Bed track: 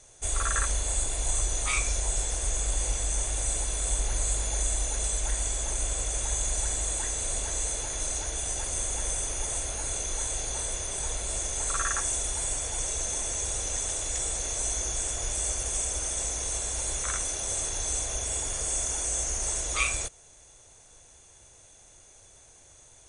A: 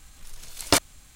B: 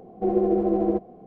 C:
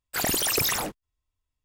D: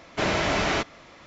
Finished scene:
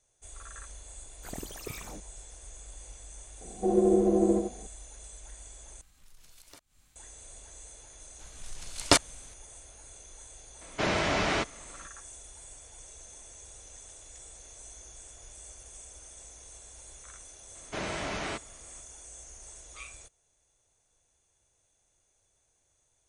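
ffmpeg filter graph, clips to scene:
-filter_complex "[1:a]asplit=2[a][b];[4:a]asplit=2[c][d];[0:a]volume=-18.5dB[e];[3:a]tiltshelf=f=790:g=6.5[f];[2:a]asplit=2[g][h];[h]adelay=93.29,volume=-6dB,highshelf=f=4k:g=-2.1[i];[g][i]amix=inputs=2:normalize=0[j];[a]acompressor=threshold=-33dB:ratio=6:attack=0.61:release=246:knee=6:detection=peak[k];[b]lowpass=f=10k:w=0.5412,lowpass=f=10k:w=1.3066[l];[e]asplit=2[m][n];[m]atrim=end=5.814[o];[k]atrim=end=1.15,asetpts=PTS-STARTPTS,volume=-12.5dB[p];[n]atrim=start=6.956[q];[f]atrim=end=1.64,asetpts=PTS-STARTPTS,volume=-16dB,afade=t=in:d=0.004:c=hsin,afade=t=out:st=1.636:d=0.004:c=hsin,adelay=1090[r];[j]atrim=end=1.26,asetpts=PTS-STARTPTS,volume=-3.5dB,afade=t=in:d=0.004:c=hsin,afade=t=out:st=1.256:d=0.004:c=hsin,adelay=150381S[s];[l]atrim=end=1.15,asetpts=PTS-STARTPTS,volume=-1dB,afade=t=in:d=0.004:c=hsin,afade=t=out:st=1.146:d=0.004:c=hsin,adelay=8190[t];[c]atrim=end=1.26,asetpts=PTS-STARTPTS,volume=-3.5dB,afade=t=in:d=0.004:c=hsin,afade=t=out:st=1.256:d=0.004:c=hsin,adelay=10610[u];[d]atrim=end=1.26,asetpts=PTS-STARTPTS,volume=-10.5dB,afade=t=in:d=0.004:c=hsin,afade=t=out:st=1.256:d=0.004:c=hsin,adelay=17550[v];[o][p]acrossfade=d=0.004:c1=hsin:c2=hsin[w];[w][q]acrossfade=d=0.004:c1=hsin:c2=hsin[x];[x][r][s][t][u][v]amix=inputs=6:normalize=0"

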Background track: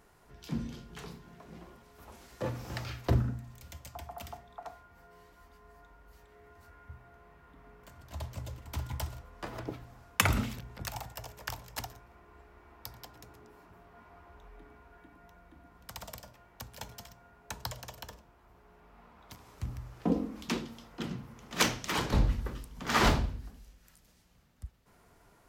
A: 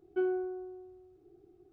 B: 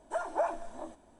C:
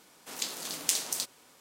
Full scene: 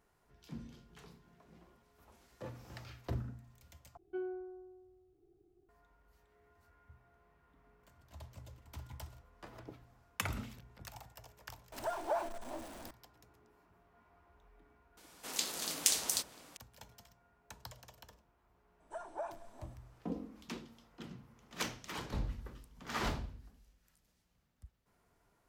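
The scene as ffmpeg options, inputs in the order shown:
-filter_complex "[2:a]asplit=2[a][b];[0:a]volume=-11.5dB[c];[1:a]lowshelf=f=86:g=9[d];[a]aeval=exprs='val(0)+0.5*0.0106*sgn(val(0))':c=same[e];[3:a]asplit=2[f][g];[g]adelay=699.7,volume=-14dB,highshelf=f=4k:g=-15.7[h];[f][h]amix=inputs=2:normalize=0[i];[c]asplit=2[j][k];[j]atrim=end=3.974[l];[d]atrim=end=1.72,asetpts=PTS-STARTPTS,volume=-10dB[m];[k]atrim=start=5.686[n];[e]atrim=end=1.19,asetpts=PTS-STARTPTS,volume=-5.5dB,afade=t=in:d=0.004:c=hsin,afade=t=out:st=1.186:d=0.004:c=hsin,adelay=11720[o];[i]atrim=end=1.6,asetpts=PTS-STARTPTS,volume=-1.5dB,afade=t=in:d=0.004:c=hsin,afade=t=out:st=1.596:d=0.004:c=hsin,adelay=14970[p];[b]atrim=end=1.19,asetpts=PTS-STARTPTS,volume=-11.5dB,afade=t=in:d=0.004:c=hsin,afade=t=out:st=1.186:d=0.004:c=hsin,adelay=18800[q];[l][m]acrossfade=d=0.004:c1=hsin:c2=hsin[r];[r][n]acrossfade=d=0.004:c1=hsin:c2=hsin[s];[s][o][p][q]amix=inputs=4:normalize=0"

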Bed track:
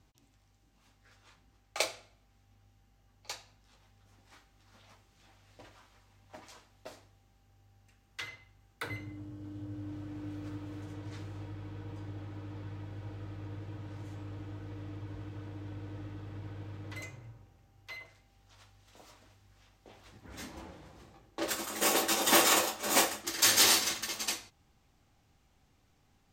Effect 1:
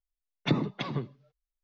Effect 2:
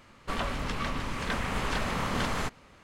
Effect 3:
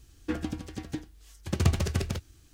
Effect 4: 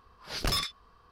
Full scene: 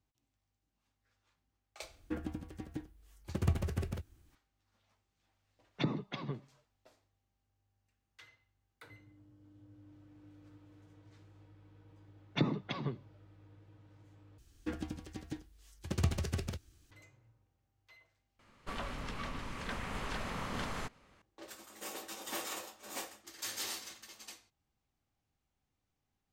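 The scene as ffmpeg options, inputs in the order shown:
-filter_complex "[3:a]asplit=2[a][b];[1:a]asplit=2[c][d];[0:a]volume=-16.5dB[e];[a]equalizer=f=5.2k:t=o:w=2:g=-9.5[f];[e]asplit=3[g][h][i];[g]atrim=end=14.384[j];[b]atrim=end=2.53,asetpts=PTS-STARTPTS,volume=-7.5dB[k];[h]atrim=start=16.906:end=18.394[l];[2:a]atrim=end=2.83,asetpts=PTS-STARTPTS,volume=-9dB[m];[i]atrim=start=21.216[n];[f]atrim=end=2.53,asetpts=PTS-STARTPTS,volume=-7dB,afade=t=in:d=0.004:c=hsin,afade=t=out:st=2.526:d=0.004:c=hsin,adelay=1820[o];[c]atrim=end=1.63,asetpts=PTS-STARTPTS,volume=-7.5dB,afade=t=in:d=0.004:c=hsin,afade=t=out:st=1.626:d=0.004:c=hsin,adelay=235053S[p];[d]atrim=end=1.63,asetpts=PTS-STARTPTS,volume=-5dB,afade=t=in:d=0.004:c=hsin,afade=t=out:st=1.626:d=0.004:c=hsin,adelay=11900[q];[j][k]acrossfade=d=0.004:c1=hsin:c2=hsin[r];[r][l]acrossfade=d=0.004:c1=hsin:c2=hsin[s];[s][m]acrossfade=d=0.004:c1=hsin:c2=hsin[t];[t][n]acrossfade=d=0.004:c1=hsin:c2=hsin[u];[u][o][p][q]amix=inputs=4:normalize=0"

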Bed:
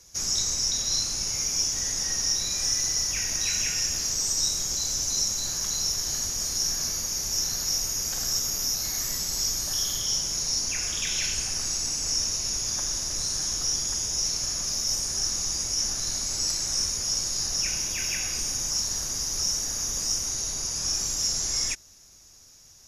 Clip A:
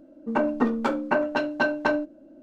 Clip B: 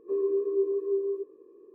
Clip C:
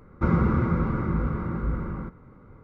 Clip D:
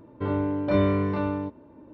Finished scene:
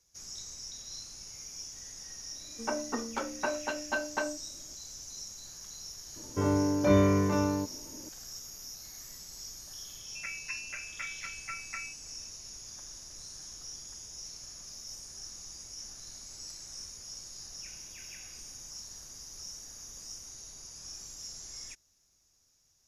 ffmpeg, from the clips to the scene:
-filter_complex "[1:a]asplit=2[a][b];[0:a]volume=-17.5dB[c];[a]lowshelf=f=340:g=-10.5[d];[b]lowpass=f=2.5k:t=q:w=0.5098,lowpass=f=2.5k:t=q:w=0.6013,lowpass=f=2.5k:t=q:w=0.9,lowpass=f=2.5k:t=q:w=2.563,afreqshift=-2900[e];[d]atrim=end=2.42,asetpts=PTS-STARTPTS,volume=-7dB,afade=t=in:d=0.004:c=hsin,afade=t=out:st=2.416:d=0.004:c=hsin,adelay=2320[f];[4:a]atrim=end=1.93,asetpts=PTS-STARTPTS,volume=-1dB,afade=t=in:d=0.004:c=hsin,afade=t=out:st=1.926:d=0.004:c=hsin,adelay=6160[g];[e]atrim=end=2.42,asetpts=PTS-STARTPTS,volume=-17.5dB,afade=t=in:d=0.004:c=hsin,afade=t=out:st=2.416:d=0.004:c=hsin,adelay=9880[h];[c][f][g][h]amix=inputs=4:normalize=0"

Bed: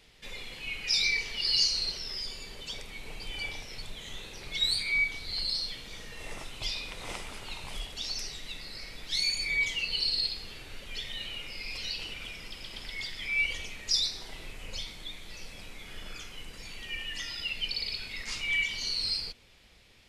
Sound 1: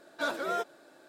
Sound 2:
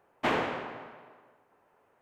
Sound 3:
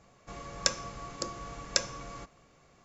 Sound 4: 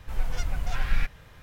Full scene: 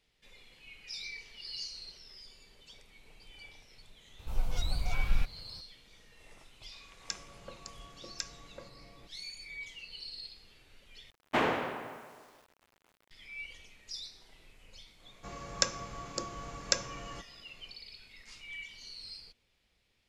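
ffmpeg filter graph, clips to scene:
-filter_complex "[3:a]asplit=2[a][b];[0:a]volume=-15.5dB[c];[4:a]equalizer=f=1.8k:t=o:w=0.53:g=-13.5[d];[a]acrossover=split=1100[e][f];[e]adelay=380[g];[g][f]amix=inputs=2:normalize=0[h];[2:a]acrusher=bits=9:mix=0:aa=0.000001[i];[c]asplit=2[j][k];[j]atrim=end=11.104[l];[i]atrim=end=2.01,asetpts=PTS-STARTPTS,volume=-0.5dB[m];[k]atrim=start=13.106[n];[d]atrim=end=1.42,asetpts=PTS-STARTPTS,volume=-3.5dB,afade=t=in:d=0.004:c=hsin,afade=t=out:st=1.416:d=0.004:c=hsin,adelay=4190[o];[h]atrim=end=2.84,asetpts=PTS-STARTPTS,volume=-11dB,afade=t=in:d=0.004:c=hsin,afade=t=out:st=2.836:d=0.004:c=hsin,adelay=6440[p];[b]atrim=end=2.84,asetpts=PTS-STARTPTS,volume=-1dB,afade=t=in:d=0.1,afade=t=out:st=2.74:d=0.1,adelay=14960[q];[l][m]acrossfade=d=0.004:c1=hsin:c2=hsin[r];[r][n]acrossfade=d=0.004:c1=hsin:c2=hsin[s];[s][o][p][q]amix=inputs=4:normalize=0"

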